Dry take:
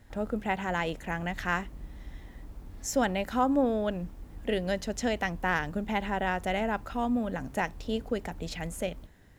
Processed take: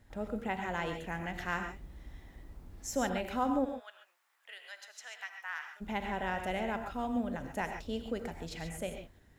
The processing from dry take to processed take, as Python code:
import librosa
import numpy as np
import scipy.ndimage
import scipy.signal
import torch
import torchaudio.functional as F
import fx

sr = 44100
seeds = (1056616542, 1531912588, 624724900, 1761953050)

y = fx.ladder_highpass(x, sr, hz=980.0, resonance_pct=25, at=(3.64, 5.8), fade=0.02)
y = fx.rev_gated(y, sr, seeds[0], gate_ms=160, shape='rising', drr_db=5.5)
y = y * 10.0 ** (-6.0 / 20.0)